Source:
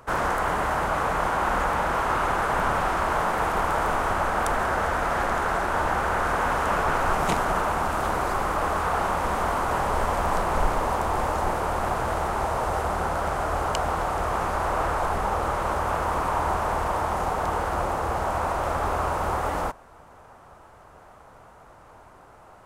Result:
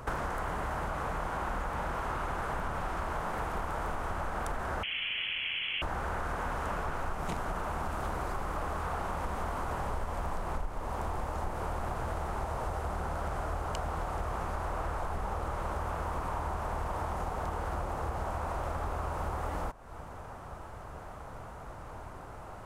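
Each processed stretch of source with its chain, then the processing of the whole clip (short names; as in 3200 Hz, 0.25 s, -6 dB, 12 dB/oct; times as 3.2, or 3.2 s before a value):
4.83–5.82 elliptic high-pass 280 Hz + inverted band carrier 3700 Hz
whole clip: low shelf 180 Hz +9 dB; compressor, threshold -35 dBFS; gain +2.5 dB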